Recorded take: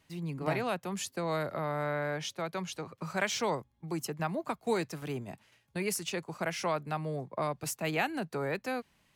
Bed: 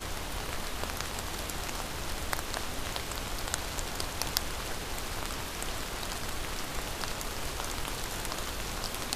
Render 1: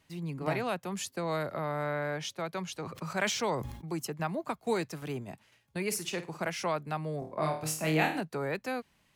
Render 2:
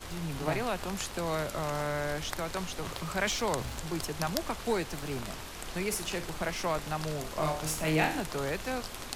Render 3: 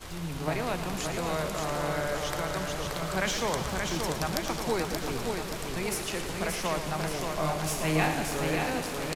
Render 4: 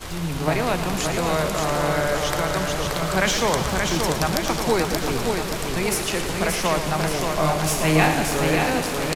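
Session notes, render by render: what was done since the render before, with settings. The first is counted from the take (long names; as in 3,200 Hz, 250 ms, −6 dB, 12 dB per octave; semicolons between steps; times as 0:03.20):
0:02.78–0:03.93: level that may fall only so fast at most 64 dB per second; 0:05.86–0:06.50: flutter between parallel walls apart 8.8 metres, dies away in 0.27 s; 0:07.19–0:08.21: flutter between parallel walls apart 4.4 metres, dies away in 0.43 s
mix in bed −5.5 dB
repeating echo 578 ms, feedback 52%, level −4.5 dB; feedback echo with a swinging delay time 113 ms, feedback 76%, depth 76 cents, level −10 dB
level +8.5 dB; brickwall limiter −1 dBFS, peak gain reduction 2 dB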